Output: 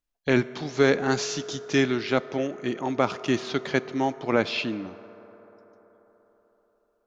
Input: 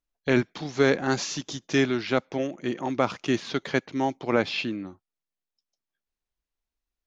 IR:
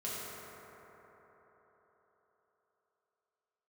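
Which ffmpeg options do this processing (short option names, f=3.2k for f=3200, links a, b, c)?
-filter_complex "[0:a]asplit=2[a][b];[1:a]atrim=start_sample=2205,asetrate=42777,aresample=44100,lowshelf=f=210:g=-6[c];[b][c]afir=irnorm=-1:irlink=0,volume=-17dB[d];[a][d]amix=inputs=2:normalize=0"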